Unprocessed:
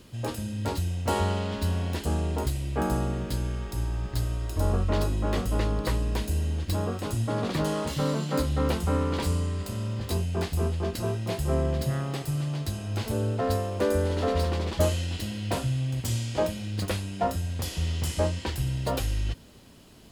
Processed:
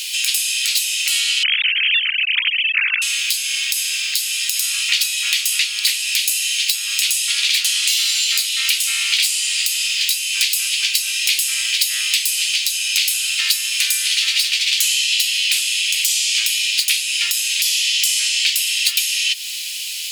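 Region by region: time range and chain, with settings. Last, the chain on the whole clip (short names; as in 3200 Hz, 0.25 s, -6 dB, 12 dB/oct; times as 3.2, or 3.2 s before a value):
1.43–3.02 sine-wave speech + air absorption 220 m
whole clip: elliptic high-pass 2400 Hz, stop band 70 dB; compressor, threshold -49 dBFS; maximiser +35 dB; gain -1 dB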